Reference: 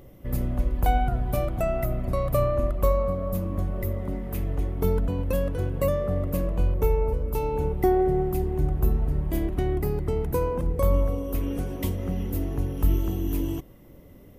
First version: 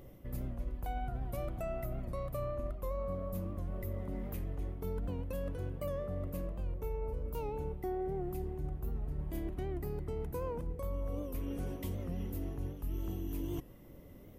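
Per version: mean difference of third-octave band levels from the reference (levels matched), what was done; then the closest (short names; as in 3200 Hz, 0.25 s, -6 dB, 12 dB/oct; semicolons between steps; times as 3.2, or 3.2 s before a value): 2.5 dB: reverse; compressor 6:1, threshold -30 dBFS, peak gain reduction 14 dB; reverse; record warp 78 rpm, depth 100 cents; gain -4.5 dB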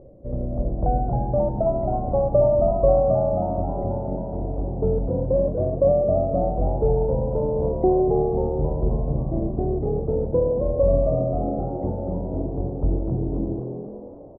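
11.0 dB: ladder low-pass 670 Hz, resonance 55%; frequency-shifting echo 0.268 s, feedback 46%, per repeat +81 Hz, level -6.5 dB; gain +9 dB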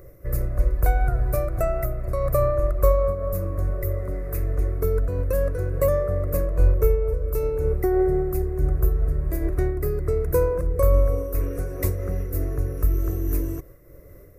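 4.0 dB: fixed phaser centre 850 Hz, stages 6; noise-modulated level, depth 60%; gain +7.5 dB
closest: first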